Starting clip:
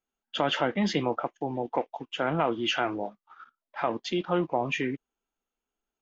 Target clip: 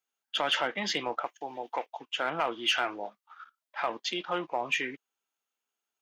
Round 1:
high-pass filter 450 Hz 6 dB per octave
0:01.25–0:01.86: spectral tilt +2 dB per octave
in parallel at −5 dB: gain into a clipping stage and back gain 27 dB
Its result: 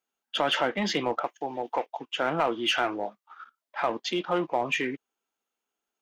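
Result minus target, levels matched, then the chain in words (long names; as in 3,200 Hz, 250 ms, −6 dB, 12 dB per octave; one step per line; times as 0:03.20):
500 Hz band +3.0 dB
high-pass filter 1,400 Hz 6 dB per octave
0:01.25–0:01.86: spectral tilt +2 dB per octave
in parallel at −5 dB: gain into a clipping stage and back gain 27 dB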